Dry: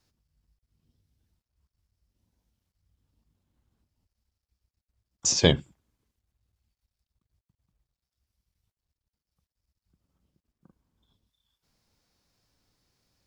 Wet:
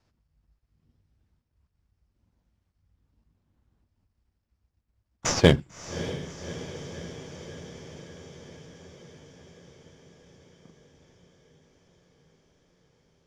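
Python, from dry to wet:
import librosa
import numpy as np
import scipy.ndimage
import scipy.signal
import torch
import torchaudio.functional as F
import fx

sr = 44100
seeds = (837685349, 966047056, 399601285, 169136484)

p1 = fx.sample_hold(x, sr, seeds[0], rate_hz=5200.0, jitter_pct=20)
p2 = x + (p1 * 10.0 ** (-3.0 / 20.0))
p3 = fx.air_absorb(p2, sr, metres=63.0)
p4 = fx.echo_diffused(p3, sr, ms=601, feedback_pct=71, wet_db=-13.0)
y = p4 * 10.0 ** (-1.0 / 20.0)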